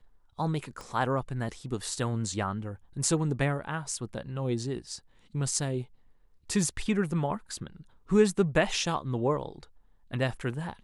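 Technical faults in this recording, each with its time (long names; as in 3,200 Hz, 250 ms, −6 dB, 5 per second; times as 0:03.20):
0:00.81: click −28 dBFS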